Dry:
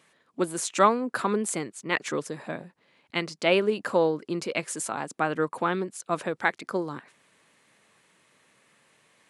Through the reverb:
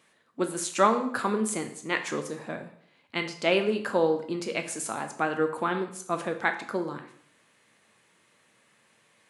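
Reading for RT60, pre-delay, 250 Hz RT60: 0.65 s, 5 ms, 0.65 s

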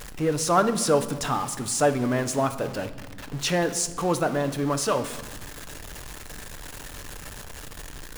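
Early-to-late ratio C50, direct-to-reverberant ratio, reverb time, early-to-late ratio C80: 12.5 dB, 8.5 dB, 1.2 s, 15.0 dB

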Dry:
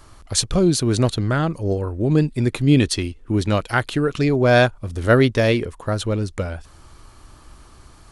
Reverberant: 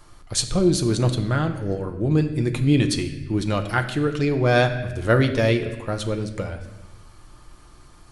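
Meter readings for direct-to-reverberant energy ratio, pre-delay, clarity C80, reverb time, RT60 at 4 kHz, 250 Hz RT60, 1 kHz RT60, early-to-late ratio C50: 5.0 dB, 6 ms, 11.5 dB, 1.1 s, 0.95 s, 1.4 s, 1.0 s, 10.0 dB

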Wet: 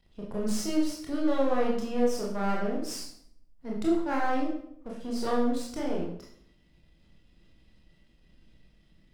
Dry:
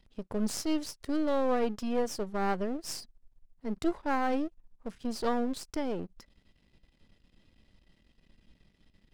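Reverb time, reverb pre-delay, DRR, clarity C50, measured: 0.65 s, 20 ms, −3.5 dB, 3.5 dB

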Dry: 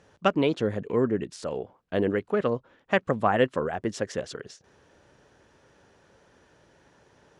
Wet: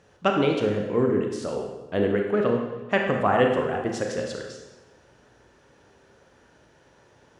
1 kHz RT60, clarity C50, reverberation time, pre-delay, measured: 1.1 s, 3.5 dB, 1.1 s, 26 ms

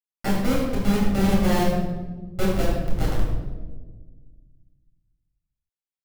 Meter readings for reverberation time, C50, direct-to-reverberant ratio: 1.4 s, 0.5 dB, −6.0 dB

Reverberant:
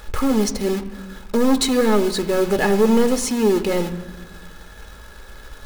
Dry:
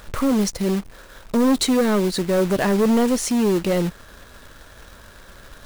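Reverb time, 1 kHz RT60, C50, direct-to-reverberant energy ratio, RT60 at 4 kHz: 1.4 s, 1.4 s, 14.0 dB, 6.5 dB, 0.90 s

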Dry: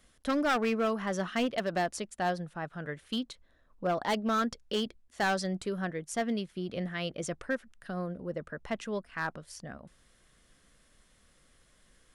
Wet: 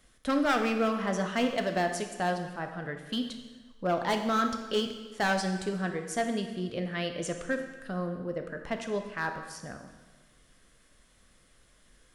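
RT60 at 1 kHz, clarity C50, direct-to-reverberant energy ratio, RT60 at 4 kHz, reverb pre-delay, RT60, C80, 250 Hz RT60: 1.3 s, 7.0 dB, 5.0 dB, 1.2 s, 7 ms, 1.3 s, 9.0 dB, 1.3 s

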